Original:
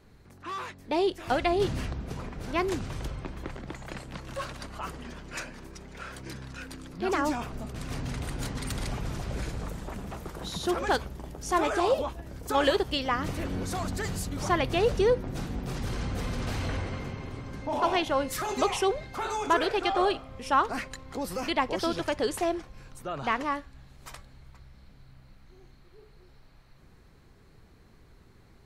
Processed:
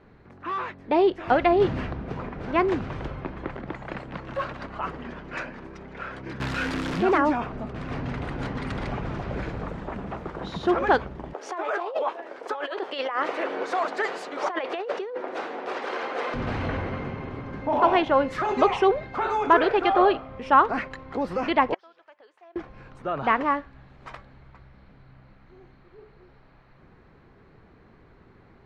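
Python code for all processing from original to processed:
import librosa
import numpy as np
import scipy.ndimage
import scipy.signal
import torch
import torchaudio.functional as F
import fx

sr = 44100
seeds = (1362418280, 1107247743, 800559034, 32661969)

y = fx.chain(x, sr, fx.crossing_spikes(level_db=-24.0),
    fx.peak_eq(hz=11000.0, db=-4.5, octaves=2.0),
    fx.env_flatten(amount_pct=70), at=(6.4, 7.18))
y = fx.chain(y, sr, fx.highpass(hz=410.0, slope=24),
    fx.over_compress(threshold_db=-34.0, ratio=-1.0), at=(11.33, 16.34))
y = fx.chain(y, sr, fx.highpass(hz=680.0, slope=12),
    fx.gate_flip(shuts_db=-29.0, range_db=-26), at=(21.74, 22.56))
y = scipy.signal.sosfilt(scipy.signal.butter(2, 2100.0, 'lowpass', fs=sr, output='sos'), y)
y = fx.low_shelf(y, sr, hz=110.0, db=-10.5)
y = y * librosa.db_to_amplitude(7.0)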